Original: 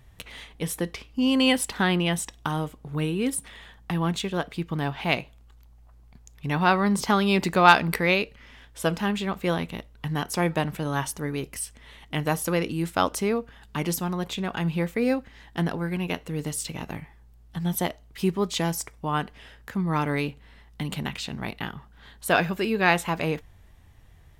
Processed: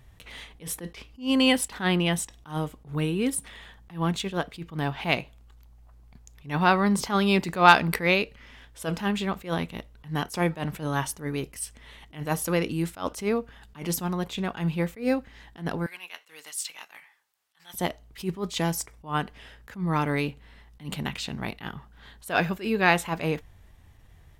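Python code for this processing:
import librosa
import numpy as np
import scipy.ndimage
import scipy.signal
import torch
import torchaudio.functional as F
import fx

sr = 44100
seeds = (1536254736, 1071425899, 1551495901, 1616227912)

y = fx.highpass(x, sr, hz=1300.0, slope=12, at=(15.86, 17.74))
y = fx.attack_slew(y, sr, db_per_s=200.0)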